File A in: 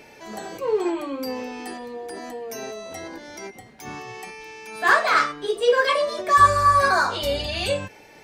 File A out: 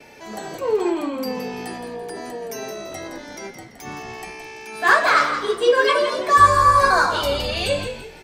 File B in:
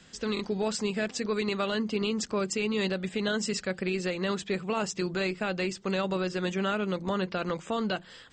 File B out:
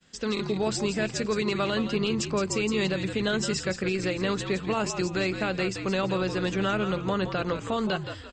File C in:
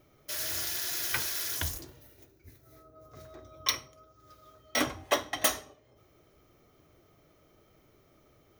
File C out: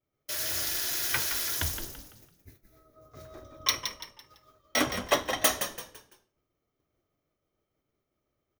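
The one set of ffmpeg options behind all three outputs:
-filter_complex "[0:a]agate=range=-33dB:threshold=-49dB:ratio=3:detection=peak,asplit=5[a][b][c][d][e];[b]adelay=168,afreqshift=-63,volume=-8.5dB[f];[c]adelay=336,afreqshift=-126,volume=-17.6dB[g];[d]adelay=504,afreqshift=-189,volume=-26.7dB[h];[e]adelay=672,afreqshift=-252,volume=-35.9dB[i];[a][f][g][h][i]amix=inputs=5:normalize=0,volume=2dB"

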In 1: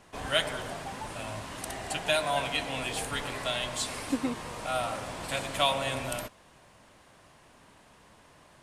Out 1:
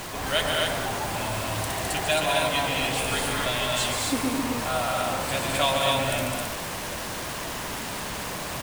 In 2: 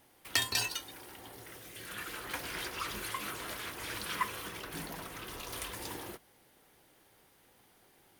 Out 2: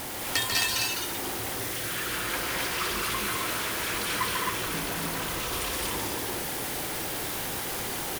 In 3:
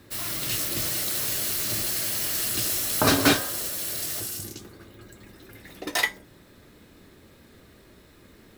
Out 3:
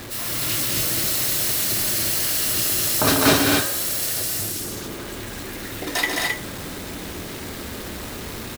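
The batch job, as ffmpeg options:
-af "aeval=exprs='val(0)+0.5*0.0266*sgn(val(0))':c=same,acrusher=bits=6:mix=0:aa=0.000001,aecho=1:1:142.9|209.9|265.3:0.501|0.631|0.708"

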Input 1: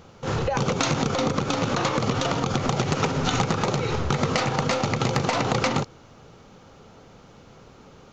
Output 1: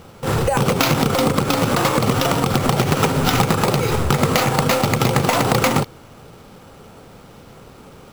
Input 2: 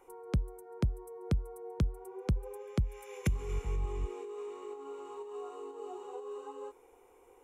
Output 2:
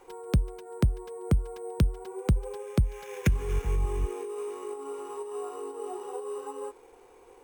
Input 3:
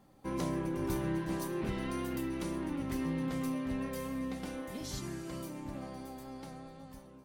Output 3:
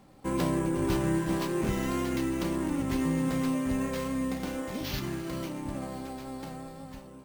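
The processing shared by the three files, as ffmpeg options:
-af "acrusher=samples=5:mix=1:aa=0.000001,volume=6.5dB"

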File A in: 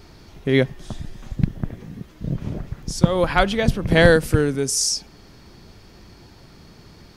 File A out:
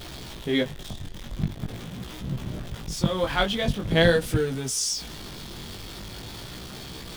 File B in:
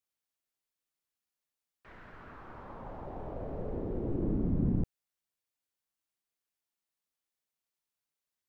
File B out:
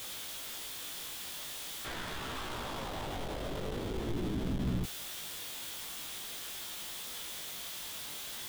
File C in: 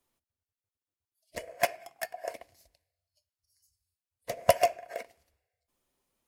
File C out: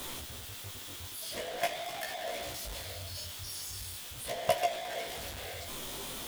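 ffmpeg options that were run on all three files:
-af "aeval=exprs='val(0)+0.5*0.0422*sgn(val(0))':c=same,equalizer=f=3.4k:w=3.7:g=8.5,flanger=delay=15.5:depth=6:speed=0.44,volume=-4.5dB"

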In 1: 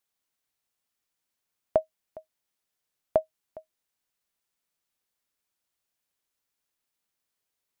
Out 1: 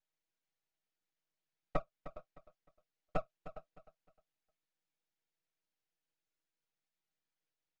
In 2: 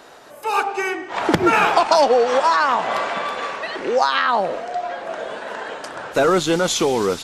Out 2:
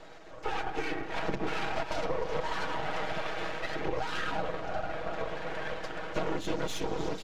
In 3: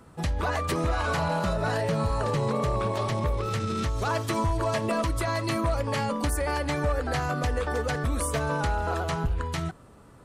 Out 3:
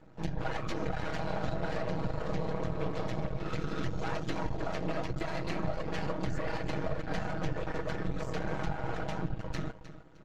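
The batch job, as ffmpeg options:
-filter_complex "[0:a]aresample=16000,asoftclip=type=hard:threshold=-14.5dB,aresample=44100,afftfilt=real='hypot(re,im)*cos(2*PI*random(0))':imag='hypot(re,im)*sin(2*PI*random(1))':win_size=512:overlap=0.75,equalizer=f=1.1k:t=o:w=0.36:g=-12,acompressor=threshold=-31dB:ratio=6,asplit=2[a][b];[b]aecho=0:1:307|614|921:0.2|0.0559|0.0156[c];[a][c]amix=inputs=2:normalize=0,aeval=exprs='max(val(0),0)':c=same,lowpass=f=2.9k:p=1,aecho=1:1:6.3:0.55,volume=4.5dB"

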